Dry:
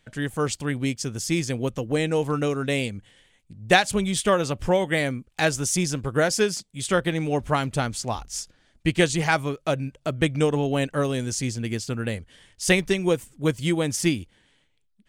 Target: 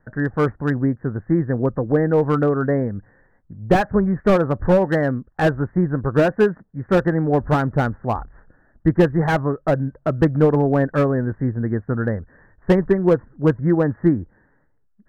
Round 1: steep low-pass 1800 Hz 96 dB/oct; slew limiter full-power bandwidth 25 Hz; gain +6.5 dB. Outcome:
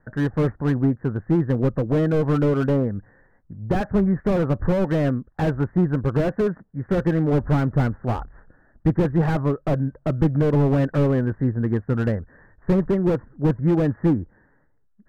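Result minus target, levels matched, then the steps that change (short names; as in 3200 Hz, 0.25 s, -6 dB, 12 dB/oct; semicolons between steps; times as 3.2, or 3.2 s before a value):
slew limiter: distortion +8 dB
change: slew limiter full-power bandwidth 74.5 Hz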